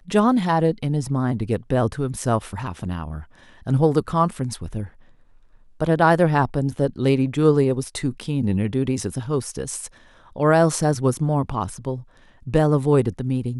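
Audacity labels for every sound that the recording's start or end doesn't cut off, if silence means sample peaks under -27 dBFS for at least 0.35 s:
3.670000	4.850000	sound
5.800000	9.860000	sound
10.360000	11.960000	sound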